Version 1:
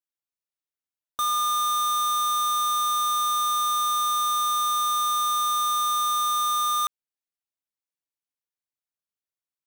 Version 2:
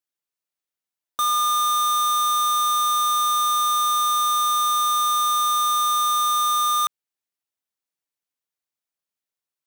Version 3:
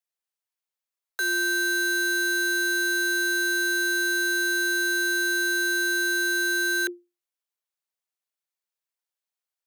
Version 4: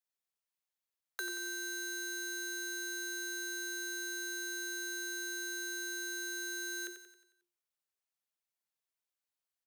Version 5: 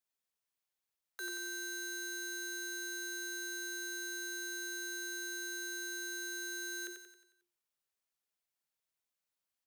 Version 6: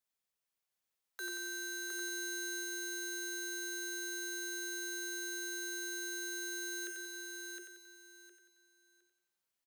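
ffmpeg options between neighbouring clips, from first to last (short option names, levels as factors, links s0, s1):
-af "lowshelf=f=98:g=-8,volume=1.5"
-af "aeval=exprs='clip(val(0),-1,0.0447)':c=same,afreqshift=350,volume=0.794"
-filter_complex "[0:a]acrossover=split=430|4000[s0][s1][s2];[s0]acompressor=threshold=0.00501:ratio=4[s3];[s1]acompressor=threshold=0.0126:ratio=4[s4];[s2]acompressor=threshold=0.01:ratio=4[s5];[s3][s4][s5]amix=inputs=3:normalize=0,aecho=1:1:90|180|270|360|450|540:0.376|0.184|0.0902|0.0442|0.0217|0.0106,volume=0.631"
-af "alimiter=level_in=2.82:limit=0.0631:level=0:latency=1,volume=0.355,volume=1.12"
-af "aecho=1:1:712|1424|2136:0.631|0.145|0.0334"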